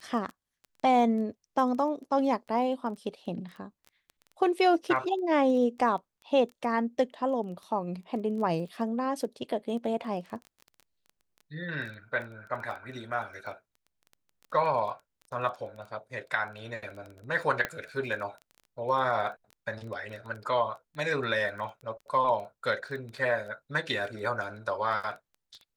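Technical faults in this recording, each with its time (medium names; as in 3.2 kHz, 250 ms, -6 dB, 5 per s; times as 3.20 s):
crackle 12 per s -37 dBFS
17.65 s: pop -15 dBFS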